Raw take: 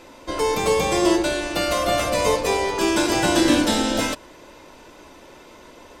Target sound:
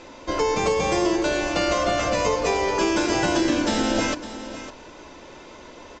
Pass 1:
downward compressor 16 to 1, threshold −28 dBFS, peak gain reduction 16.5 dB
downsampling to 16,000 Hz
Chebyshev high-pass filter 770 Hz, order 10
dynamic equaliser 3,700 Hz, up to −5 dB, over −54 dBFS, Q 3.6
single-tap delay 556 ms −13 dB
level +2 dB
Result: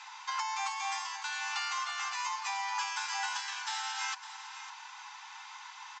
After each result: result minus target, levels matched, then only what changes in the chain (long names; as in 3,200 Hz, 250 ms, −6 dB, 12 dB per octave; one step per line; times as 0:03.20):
downward compressor: peak gain reduction +8 dB; 1,000 Hz band +4.0 dB
change: downward compressor 16 to 1, threshold −19.5 dBFS, peak gain reduction 8.5 dB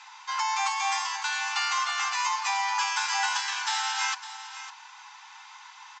1,000 Hz band +3.5 dB
remove: Chebyshev high-pass filter 770 Hz, order 10